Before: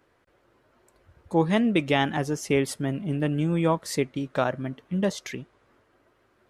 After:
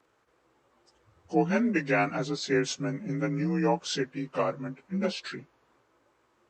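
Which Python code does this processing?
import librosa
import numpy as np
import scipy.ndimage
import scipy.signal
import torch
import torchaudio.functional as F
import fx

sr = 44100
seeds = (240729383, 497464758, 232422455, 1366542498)

y = fx.partial_stretch(x, sr, pct=88)
y = fx.tilt_eq(y, sr, slope=1.5)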